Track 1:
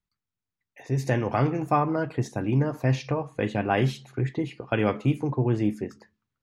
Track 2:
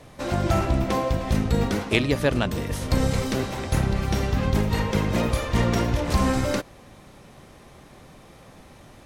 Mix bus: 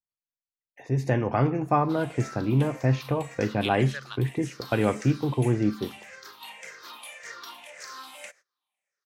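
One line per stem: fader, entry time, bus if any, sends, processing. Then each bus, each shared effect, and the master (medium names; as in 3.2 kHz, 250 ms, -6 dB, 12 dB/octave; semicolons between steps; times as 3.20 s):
+0.5 dB, 0.00 s, no send, treble shelf 3.1 kHz -7 dB
-12.0 dB, 1.70 s, no send, drifting ripple filter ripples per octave 0.54, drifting -1.8 Hz, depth 16 dB; high-pass 1.3 kHz 12 dB/octave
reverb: none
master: gate -55 dBFS, range -22 dB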